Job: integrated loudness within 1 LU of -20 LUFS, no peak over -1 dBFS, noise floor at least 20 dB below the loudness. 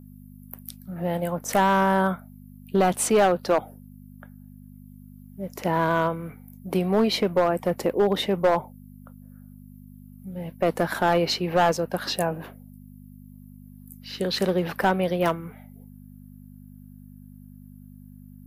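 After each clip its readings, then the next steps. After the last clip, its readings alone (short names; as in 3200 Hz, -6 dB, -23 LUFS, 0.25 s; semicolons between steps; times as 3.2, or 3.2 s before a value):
clipped 0.7%; flat tops at -13.5 dBFS; hum 50 Hz; harmonics up to 250 Hz; hum level -44 dBFS; loudness -24.0 LUFS; peak -13.5 dBFS; loudness target -20.0 LUFS
-> clip repair -13.5 dBFS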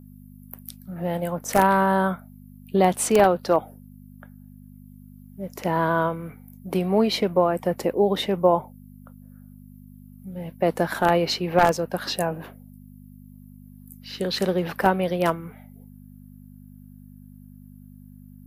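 clipped 0.0%; hum 50 Hz; harmonics up to 250 Hz; hum level -44 dBFS
-> de-hum 50 Hz, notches 5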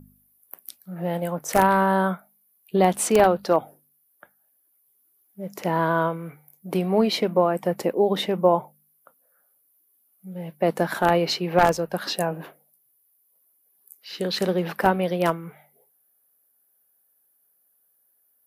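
hum none; loudness -23.0 LUFS; peak -4.5 dBFS; loudness target -20.0 LUFS
-> gain +3 dB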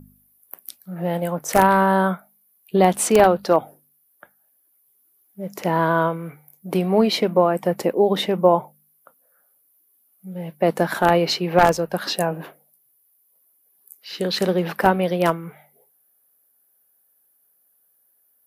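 loudness -20.0 LUFS; peak -1.5 dBFS; noise floor -64 dBFS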